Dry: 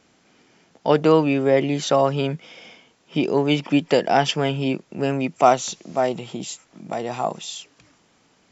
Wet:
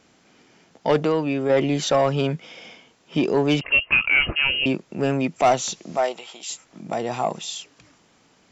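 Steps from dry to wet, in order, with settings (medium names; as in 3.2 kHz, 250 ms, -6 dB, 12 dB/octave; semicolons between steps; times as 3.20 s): 1.02–1.50 s: compression 1.5:1, threshold -29 dBFS, peak gain reduction 7 dB; 5.96–6.48 s: high-pass 460 Hz -> 1.1 kHz 12 dB/octave; saturation -12 dBFS, distortion -13 dB; 3.61–4.66 s: frequency inversion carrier 3 kHz; trim +1.5 dB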